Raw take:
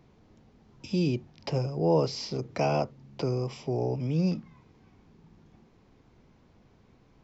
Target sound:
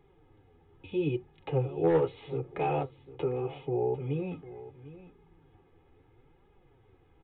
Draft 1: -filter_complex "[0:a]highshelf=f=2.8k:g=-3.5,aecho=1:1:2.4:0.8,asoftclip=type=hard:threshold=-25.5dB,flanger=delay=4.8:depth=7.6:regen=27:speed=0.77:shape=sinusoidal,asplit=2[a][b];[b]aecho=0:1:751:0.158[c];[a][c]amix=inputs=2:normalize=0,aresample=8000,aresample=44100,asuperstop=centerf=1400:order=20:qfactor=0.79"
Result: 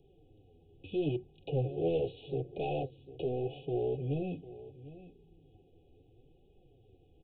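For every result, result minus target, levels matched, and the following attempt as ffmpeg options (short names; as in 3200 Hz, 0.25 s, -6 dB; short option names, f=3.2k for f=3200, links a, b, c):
hard clip: distortion +12 dB; 1000 Hz band -4.0 dB
-filter_complex "[0:a]highshelf=f=2.8k:g=-3.5,aecho=1:1:2.4:0.8,asoftclip=type=hard:threshold=-17dB,flanger=delay=4.8:depth=7.6:regen=27:speed=0.77:shape=sinusoidal,asplit=2[a][b];[b]aecho=0:1:751:0.158[c];[a][c]amix=inputs=2:normalize=0,aresample=8000,aresample=44100,asuperstop=centerf=1400:order=20:qfactor=0.79"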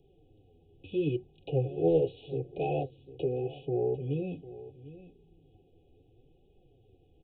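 1000 Hz band -5.0 dB
-filter_complex "[0:a]highshelf=f=2.8k:g=-3.5,aecho=1:1:2.4:0.8,asoftclip=type=hard:threshold=-17dB,flanger=delay=4.8:depth=7.6:regen=27:speed=0.77:shape=sinusoidal,asplit=2[a][b];[b]aecho=0:1:751:0.158[c];[a][c]amix=inputs=2:normalize=0,aresample=8000,aresample=44100"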